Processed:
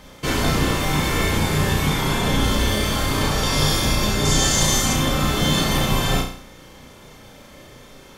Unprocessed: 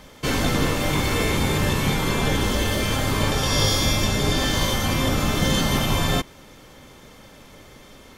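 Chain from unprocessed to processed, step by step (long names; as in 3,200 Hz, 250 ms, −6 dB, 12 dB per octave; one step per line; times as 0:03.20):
0:04.25–0:04.93: parametric band 7,000 Hz +12 dB 0.87 octaves
flutter between parallel walls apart 5.7 metres, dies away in 0.5 s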